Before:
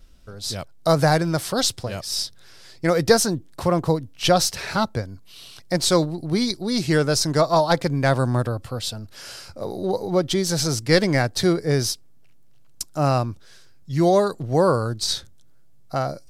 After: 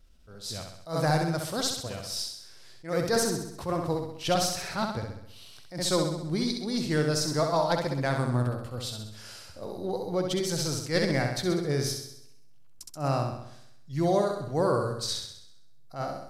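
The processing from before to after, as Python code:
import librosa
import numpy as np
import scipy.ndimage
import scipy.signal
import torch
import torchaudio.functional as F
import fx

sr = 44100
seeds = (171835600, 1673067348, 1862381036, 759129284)

y = fx.room_flutter(x, sr, wall_m=11.2, rt60_s=0.76)
y = fx.attack_slew(y, sr, db_per_s=190.0)
y = F.gain(torch.from_numpy(y), -8.5).numpy()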